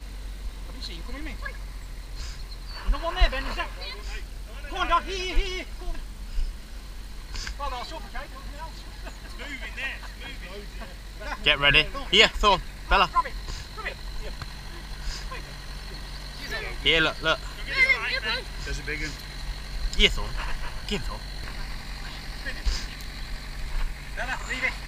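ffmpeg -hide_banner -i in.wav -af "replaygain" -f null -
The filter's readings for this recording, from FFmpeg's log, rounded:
track_gain = +5.5 dB
track_peak = 0.529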